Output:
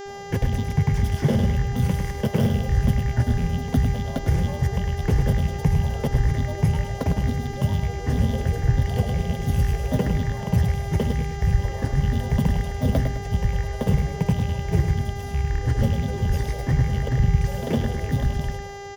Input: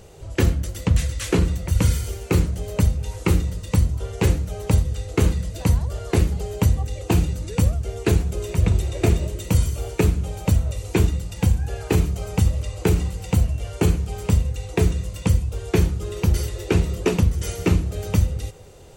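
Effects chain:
loose part that buzzes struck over −24 dBFS, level −20 dBFS
in parallel at −8 dB: sample-rate reduction 13,000 Hz
on the sum: brickwall limiter −9.5 dBFS, peak gain reduction 6.5 dB
parametric band 160 Hz +11 dB 0.61 octaves
granular cloud, pitch spread up and down by 7 semitones
hum with harmonics 400 Hz, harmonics 19, −30 dBFS −6 dB per octave
thirty-one-band graphic EQ 200 Hz −5 dB, 315 Hz −11 dB, 1,250 Hz −10 dB, 2,500 Hz −11 dB, 4,000 Hz −12 dB, 8,000 Hz −9 dB
on a send: repeating echo 104 ms, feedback 38%, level −7.5 dB
on the sum: level −3 dB

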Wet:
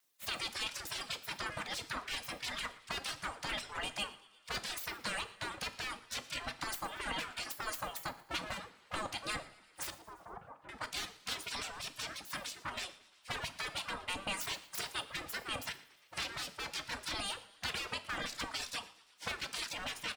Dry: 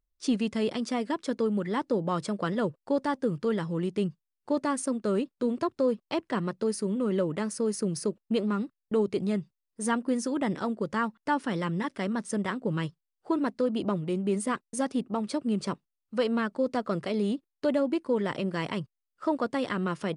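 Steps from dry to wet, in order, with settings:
lower of the sound and its delayed copy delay 2.5 ms
gate on every frequency bin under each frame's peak −25 dB weak
brickwall limiter −36 dBFS, peak gain reduction 9 dB
reverb reduction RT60 0.69 s
tuned comb filter 160 Hz, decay 0.67 s, mix 40%
0:09.90–0:10.69: transistor ladder low-pass 1,200 Hz, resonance 30%
on a send: echo with shifted repeats 116 ms, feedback 48%, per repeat +98 Hz, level −20.5 dB
on the sum: coupled-rooms reverb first 0.47 s, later 1.8 s, from −20 dB, DRR 10.5 dB
one half of a high-frequency compander encoder only
level +14 dB

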